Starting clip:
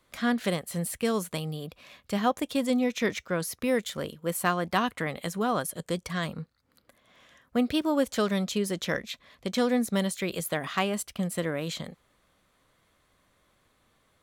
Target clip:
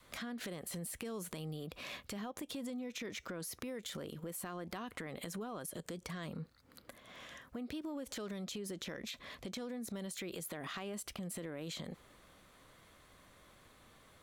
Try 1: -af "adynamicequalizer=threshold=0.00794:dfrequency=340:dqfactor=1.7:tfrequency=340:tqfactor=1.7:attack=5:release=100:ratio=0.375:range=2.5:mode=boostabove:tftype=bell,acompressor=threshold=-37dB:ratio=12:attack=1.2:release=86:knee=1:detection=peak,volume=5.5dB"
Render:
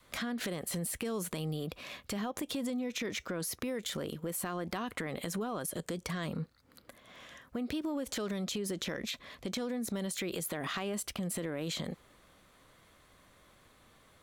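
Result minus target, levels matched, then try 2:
compressor: peak gain reduction -7 dB
-af "adynamicequalizer=threshold=0.00794:dfrequency=340:dqfactor=1.7:tfrequency=340:tqfactor=1.7:attack=5:release=100:ratio=0.375:range=2.5:mode=boostabove:tftype=bell,acompressor=threshold=-44.5dB:ratio=12:attack=1.2:release=86:knee=1:detection=peak,volume=5.5dB"

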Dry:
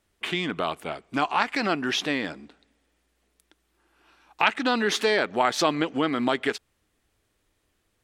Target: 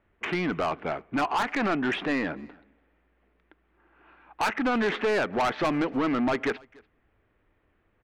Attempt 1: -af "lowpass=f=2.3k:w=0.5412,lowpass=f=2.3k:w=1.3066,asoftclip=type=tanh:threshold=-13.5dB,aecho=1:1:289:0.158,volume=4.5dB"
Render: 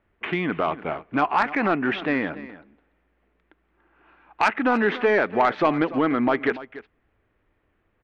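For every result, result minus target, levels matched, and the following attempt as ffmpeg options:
soft clip: distortion -11 dB; echo-to-direct +10 dB
-af "lowpass=f=2.3k:w=0.5412,lowpass=f=2.3k:w=1.3066,asoftclip=type=tanh:threshold=-25.5dB,aecho=1:1:289:0.158,volume=4.5dB"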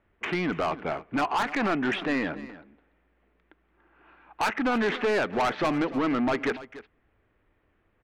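echo-to-direct +10 dB
-af "lowpass=f=2.3k:w=0.5412,lowpass=f=2.3k:w=1.3066,asoftclip=type=tanh:threshold=-25.5dB,aecho=1:1:289:0.0501,volume=4.5dB"

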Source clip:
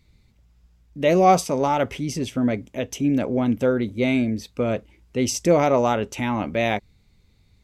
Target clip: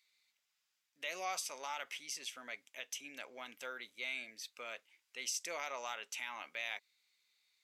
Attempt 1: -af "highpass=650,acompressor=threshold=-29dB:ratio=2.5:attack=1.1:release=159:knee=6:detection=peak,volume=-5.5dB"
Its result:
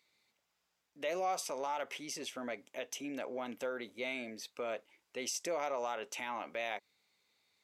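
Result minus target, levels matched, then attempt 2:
500 Hz band +8.0 dB
-af "highpass=1.8k,acompressor=threshold=-29dB:ratio=2.5:attack=1.1:release=159:knee=6:detection=peak,volume=-5.5dB"

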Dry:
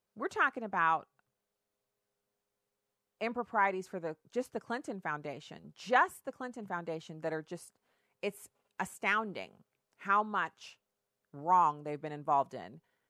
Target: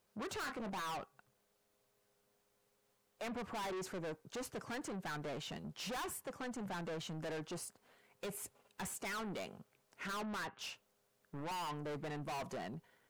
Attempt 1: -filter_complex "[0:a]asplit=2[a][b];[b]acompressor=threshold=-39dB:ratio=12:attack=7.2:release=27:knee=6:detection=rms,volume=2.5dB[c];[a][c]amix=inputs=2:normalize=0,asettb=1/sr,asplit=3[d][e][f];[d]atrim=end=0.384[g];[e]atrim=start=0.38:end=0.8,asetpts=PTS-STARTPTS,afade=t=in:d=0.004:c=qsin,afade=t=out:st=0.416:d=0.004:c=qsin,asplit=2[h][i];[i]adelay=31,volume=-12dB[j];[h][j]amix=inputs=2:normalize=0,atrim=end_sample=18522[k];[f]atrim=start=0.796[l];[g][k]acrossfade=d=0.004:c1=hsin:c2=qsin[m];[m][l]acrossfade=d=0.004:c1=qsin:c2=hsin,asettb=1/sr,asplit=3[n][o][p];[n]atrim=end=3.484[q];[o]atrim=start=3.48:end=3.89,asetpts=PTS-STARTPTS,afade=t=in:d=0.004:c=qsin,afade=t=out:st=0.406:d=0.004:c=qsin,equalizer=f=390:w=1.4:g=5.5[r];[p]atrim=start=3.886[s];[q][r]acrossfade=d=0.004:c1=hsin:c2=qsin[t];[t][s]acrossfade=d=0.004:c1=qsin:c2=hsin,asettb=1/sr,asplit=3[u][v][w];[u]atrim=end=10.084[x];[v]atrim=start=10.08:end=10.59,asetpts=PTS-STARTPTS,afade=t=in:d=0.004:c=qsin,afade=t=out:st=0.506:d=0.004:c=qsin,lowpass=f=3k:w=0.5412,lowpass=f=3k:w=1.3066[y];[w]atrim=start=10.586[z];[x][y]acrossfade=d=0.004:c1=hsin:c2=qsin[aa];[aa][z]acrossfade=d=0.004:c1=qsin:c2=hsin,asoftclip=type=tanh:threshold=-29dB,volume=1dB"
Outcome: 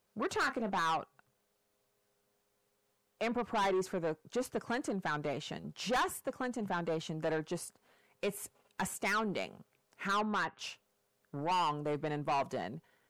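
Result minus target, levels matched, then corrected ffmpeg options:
soft clip: distortion -6 dB
-filter_complex "[0:a]asplit=2[a][b];[b]acompressor=threshold=-39dB:ratio=12:attack=7.2:release=27:knee=6:detection=rms,volume=2.5dB[c];[a][c]amix=inputs=2:normalize=0,asettb=1/sr,asplit=3[d][e][f];[d]atrim=end=0.384[g];[e]atrim=start=0.38:end=0.8,asetpts=PTS-STARTPTS,afade=t=in:d=0.004:c=qsin,afade=t=out:st=0.416:d=0.004:c=qsin,asplit=2[h][i];[i]adelay=31,volume=-12dB[j];[h][j]amix=inputs=2:normalize=0,atrim=end_sample=18522[k];[f]atrim=start=0.796[l];[g][k]acrossfade=d=0.004:c1=hsin:c2=qsin[m];[m][l]acrossfade=d=0.004:c1=qsin:c2=hsin,asettb=1/sr,asplit=3[n][o][p];[n]atrim=end=3.484[q];[o]atrim=start=3.48:end=3.89,asetpts=PTS-STARTPTS,afade=t=in:d=0.004:c=qsin,afade=t=out:st=0.406:d=0.004:c=qsin,equalizer=f=390:w=1.4:g=5.5[r];[p]atrim=start=3.886[s];[q][r]acrossfade=d=0.004:c1=hsin:c2=qsin[t];[t][s]acrossfade=d=0.004:c1=qsin:c2=hsin,asettb=1/sr,asplit=3[u][v][w];[u]atrim=end=10.084[x];[v]atrim=start=10.08:end=10.59,asetpts=PTS-STARTPTS,afade=t=in:d=0.004:c=qsin,afade=t=out:st=0.506:d=0.004:c=qsin,lowpass=f=3k:w=0.5412,lowpass=f=3k:w=1.3066[y];[w]atrim=start=10.586[z];[x][y]acrossfade=d=0.004:c1=hsin:c2=qsin[aa];[aa][z]acrossfade=d=0.004:c1=qsin:c2=hsin,asoftclip=type=tanh:threshold=-41dB,volume=1dB"

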